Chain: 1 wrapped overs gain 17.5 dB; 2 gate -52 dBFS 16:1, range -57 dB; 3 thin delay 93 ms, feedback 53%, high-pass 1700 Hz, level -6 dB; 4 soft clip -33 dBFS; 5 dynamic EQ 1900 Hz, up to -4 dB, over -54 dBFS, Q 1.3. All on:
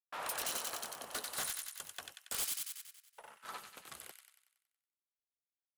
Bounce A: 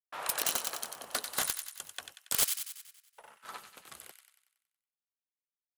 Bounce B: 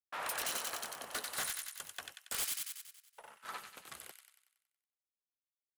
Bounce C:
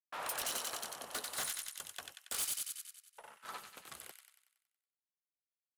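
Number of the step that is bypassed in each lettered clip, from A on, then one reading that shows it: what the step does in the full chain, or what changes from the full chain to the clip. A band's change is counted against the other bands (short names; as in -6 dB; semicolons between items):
4, distortion -5 dB; 5, 2 kHz band +3.0 dB; 1, momentary loudness spread change -1 LU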